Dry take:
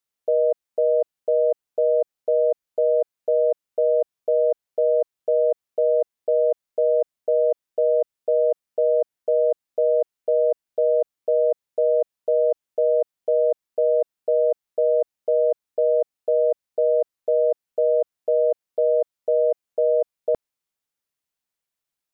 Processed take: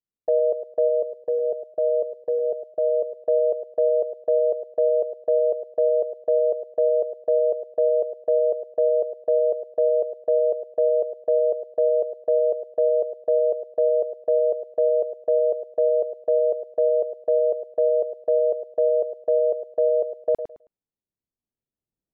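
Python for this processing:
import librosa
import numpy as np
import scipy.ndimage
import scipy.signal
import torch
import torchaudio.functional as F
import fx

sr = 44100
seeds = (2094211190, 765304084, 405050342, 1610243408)

y = fx.recorder_agc(x, sr, target_db=-18.0, rise_db_per_s=5.5, max_gain_db=30)
y = fx.env_lowpass(y, sr, base_hz=340.0, full_db=-20.0)
y = fx.echo_feedback(y, sr, ms=107, feedback_pct=21, wet_db=-10.5)
y = fx.notch_cascade(y, sr, direction='falling', hz=1.0, at=(0.87, 3.15), fade=0.02)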